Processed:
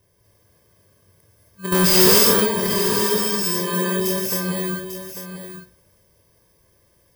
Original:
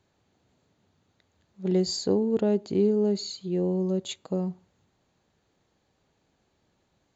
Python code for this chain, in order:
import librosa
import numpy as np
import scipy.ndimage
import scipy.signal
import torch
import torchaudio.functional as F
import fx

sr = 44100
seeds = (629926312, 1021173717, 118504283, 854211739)

p1 = fx.bit_reversed(x, sr, seeds[0], block=32)
p2 = p1 + 0.67 * np.pad(p1, (int(1.9 * sr / 1000.0), 0))[:len(p1)]
p3 = fx.transient(p2, sr, attack_db=-2, sustain_db=8)
p4 = fx.over_compress(p3, sr, threshold_db=-30.0, ratio=-1.0)
p5 = p3 + (p4 * 10.0 ** (3.0 / 20.0))
p6 = fx.leveller(p5, sr, passes=5, at=(1.72, 2.19))
p7 = p6 + fx.echo_single(p6, sr, ms=845, db=-10.0, dry=0)
p8 = fx.rev_gated(p7, sr, seeds[1], gate_ms=290, shape='rising', drr_db=-2.5)
y = p8 * 10.0 ** (-6.0 / 20.0)